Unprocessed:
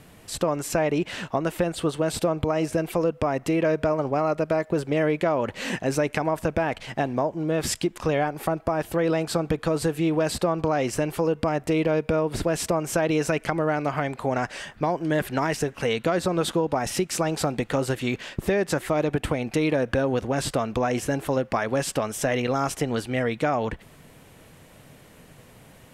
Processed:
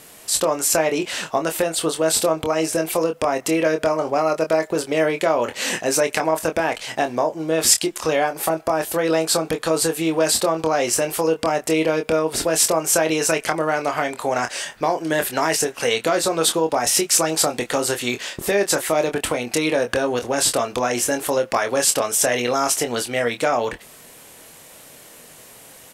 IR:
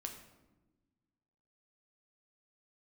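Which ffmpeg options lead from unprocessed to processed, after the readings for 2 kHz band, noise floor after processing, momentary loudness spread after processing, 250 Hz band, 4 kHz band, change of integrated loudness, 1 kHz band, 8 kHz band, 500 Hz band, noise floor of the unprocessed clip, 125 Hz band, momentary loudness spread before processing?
+6.0 dB, -45 dBFS, 6 LU, +0.5 dB, +10.5 dB, +5.0 dB, +5.0 dB, +14.5 dB, +4.5 dB, -51 dBFS, -5.0 dB, 4 LU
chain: -filter_complex "[0:a]bass=f=250:g=-13,treble=f=4k:g=10,asplit=2[a][b];[b]adelay=25,volume=-7dB[c];[a][c]amix=inputs=2:normalize=0,volume=4.5dB"

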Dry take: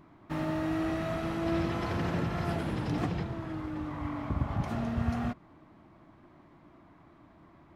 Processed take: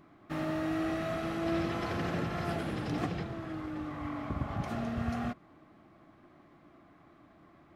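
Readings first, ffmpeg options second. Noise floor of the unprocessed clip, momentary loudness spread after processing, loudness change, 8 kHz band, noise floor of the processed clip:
-58 dBFS, 6 LU, -2.0 dB, 0.0 dB, -60 dBFS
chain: -af "asuperstop=centerf=940:order=4:qfactor=7.4,lowshelf=f=160:g=-7"

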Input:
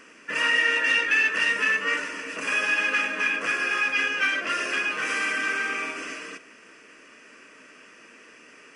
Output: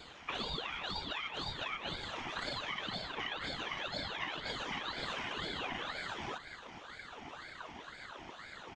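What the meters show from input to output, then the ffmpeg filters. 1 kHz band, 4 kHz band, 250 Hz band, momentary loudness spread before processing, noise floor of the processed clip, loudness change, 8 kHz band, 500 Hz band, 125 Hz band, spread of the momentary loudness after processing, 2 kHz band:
-8.5 dB, -7.5 dB, -8.0 dB, 11 LU, -52 dBFS, -17.0 dB, -17.5 dB, -9.0 dB, n/a, 10 LU, -19.5 dB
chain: -filter_complex "[0:a]lowpass=f=5.6k:w=0.5412,lowpass=f=5.6k:w=1.3066,asubboost=boost=9.5:cutoff=240,acompressor=threshold=-35dB:ratio=10,afftfilt=real='hypot(re,im)*cos(2*PI*random(0))':imag='hypot(re,im)*sin(2*PI*random(1))':win_size=512:overlap=0.75,asplit=2[a][b];[b]adelay=310,highpass=300,lowpass=3.4k,asoftclip=type=hard:threshold=-39.5dB,volume=-24dB[c];[a][c]amix=inputs=2:normalize=0,aeval=exprs='val(0)*sin(2*PI*1200*n/s+1200*0.6/2*sin(2*PI*2*n/s))':c=same,volume=7dB"

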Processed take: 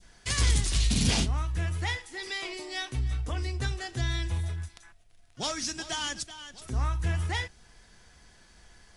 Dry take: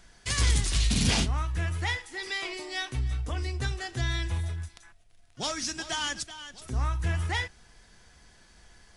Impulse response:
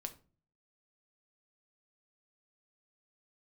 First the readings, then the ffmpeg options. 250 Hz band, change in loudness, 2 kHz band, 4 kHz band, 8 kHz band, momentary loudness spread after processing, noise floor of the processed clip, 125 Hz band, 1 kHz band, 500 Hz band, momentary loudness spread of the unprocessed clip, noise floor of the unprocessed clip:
0.0 dB, -0.5 dB, -2.0 dB, -1.0 dB, 0.0 dB, 10 LU, -58 dBFS, 0.0 dB, -1.5 dB, -0.5 dB, 10 LU, -58 dBFS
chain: -af "adynamicequalizer=threshold=0.00631:dfrequency=1500:dqfactor=0.7:tfrequency=1500:tqfactor=0.7:attack=5:release=100:ratio=0.375:range=2:mode=cutabove:tftype=bell"

